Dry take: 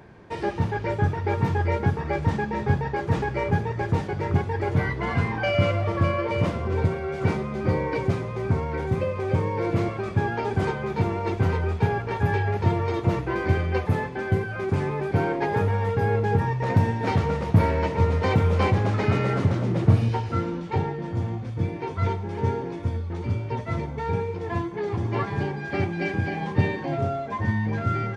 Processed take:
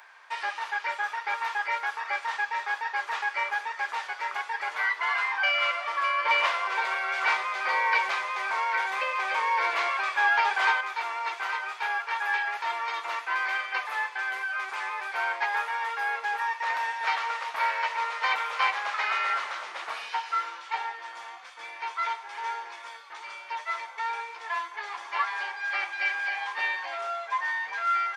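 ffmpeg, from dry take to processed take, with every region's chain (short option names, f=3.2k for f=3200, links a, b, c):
-filter_complex "[0:a]asettb=1/sr,asplit=3[a][b][c];[a]atrim=end=6.254[d];[b]atrim=start=6.25:end=10.81,asetpts=PTS-STARTPTS,afade=t=in:d=0.004:c=qsin,afade=t=out:st=4.556:d=0.004:c=qsin,acontrast=68,bandreject=f=1.3k:w=12[e];[c]atrim=start=10.806[f];[d][e]acrossfade=d=0.004:c1=hsin:c2=qsin[g];[g][f]acrossfade=d=0.004:c1=qsin:c2=hsin,acrossover=split=4900[h][i];[i]acompressor=threshold=-59dB:ratio=4:attack=1:release=60[j];[h][j]amix=inputs=2:normalize=0,highpass=f=1k:w=0.5412,highpass=f=1k:w=1.3066,volume=5.5dB"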